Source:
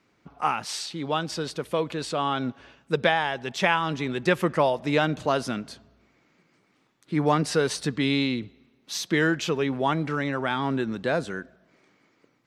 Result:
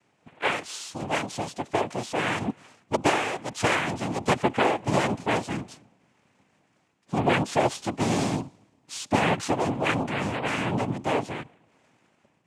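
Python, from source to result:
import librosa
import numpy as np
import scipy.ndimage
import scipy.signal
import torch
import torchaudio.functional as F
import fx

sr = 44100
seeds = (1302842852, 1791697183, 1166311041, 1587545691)

y = fx.lowpass(x, sr, hz=3000.0, slope=6)
y = fx.noise_vocoder(y, sr, seeds[0], bands=4)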